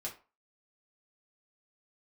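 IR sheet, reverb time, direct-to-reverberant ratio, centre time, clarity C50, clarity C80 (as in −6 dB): 0.35 s, −4.0 dB, 17 ms, 11.0 dB, 17.5 dB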